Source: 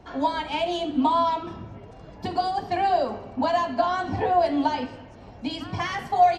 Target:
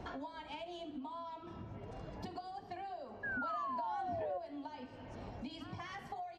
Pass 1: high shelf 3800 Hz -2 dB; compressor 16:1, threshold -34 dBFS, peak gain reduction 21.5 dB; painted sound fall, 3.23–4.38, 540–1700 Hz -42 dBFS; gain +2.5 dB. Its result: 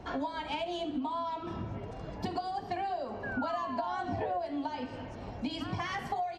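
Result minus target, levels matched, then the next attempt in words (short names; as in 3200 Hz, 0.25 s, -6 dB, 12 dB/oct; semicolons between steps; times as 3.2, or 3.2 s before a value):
compressor: peak gain reduction -11 dB
high shelf 3800 Hz -2 dB; compressor 16:1, threshold -45.5 dBFS, peak gain reduction 32.5 dB; painted sound fall, 3.23–4.38, 540–1700 Hz -42 dBFS; gain +2.5 dB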